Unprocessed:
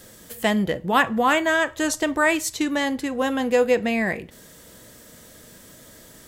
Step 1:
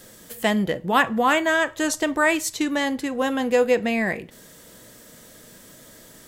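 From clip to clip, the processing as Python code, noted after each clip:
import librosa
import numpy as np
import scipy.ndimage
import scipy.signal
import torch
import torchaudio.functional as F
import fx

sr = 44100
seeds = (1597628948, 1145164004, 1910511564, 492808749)

y = fx.peak_eq(x, sr, hz=71.0, db=-7.5, octaves=0.77)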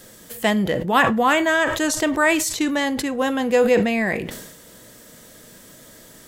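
y = fx.sustainer(x, sr, db_per_s=52.0)
y = y * 10.0 ** (1.5 / 20.0)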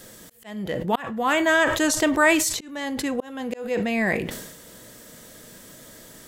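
y = fx.auto_swell(x, sr, attack_ms=560.0)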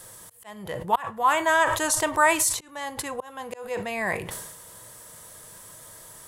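y = fx.graphic_eq_15(x, sr, hz=(100, 250, 1000, 10000), db=(7, -11, 11, 12))
y = y * 10.0 ** (-5.0 / 20.0)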